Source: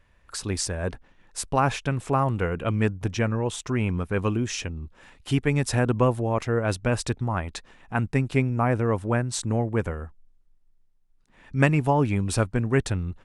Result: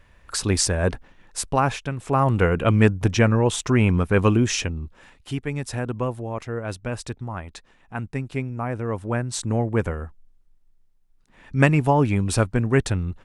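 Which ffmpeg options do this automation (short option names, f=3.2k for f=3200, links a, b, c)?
-af "volume=25.5dB,afade=t=out:st=0.89:d=1.08:silence=0.298538,afade=t=in:st=1.97:d=0.45:silence=0.298538,afade=t=out:st=4.47:d=0.87:silence=0.251189,afade=t=in:st=8.73:d=1.04:silence=0.398107"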